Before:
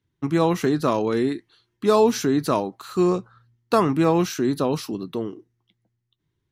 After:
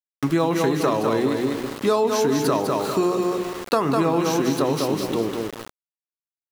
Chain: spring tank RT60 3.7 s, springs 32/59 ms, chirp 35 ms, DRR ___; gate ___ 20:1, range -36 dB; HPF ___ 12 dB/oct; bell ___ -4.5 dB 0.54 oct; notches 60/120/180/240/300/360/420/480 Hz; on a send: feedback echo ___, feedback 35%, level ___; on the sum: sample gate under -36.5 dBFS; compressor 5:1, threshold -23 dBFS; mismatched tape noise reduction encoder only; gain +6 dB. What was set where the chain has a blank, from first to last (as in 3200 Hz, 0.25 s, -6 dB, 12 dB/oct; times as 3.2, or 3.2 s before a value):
14 dB, -47 dBFS, 84 Hz, 200 Hz, 0.2 s, -5 dB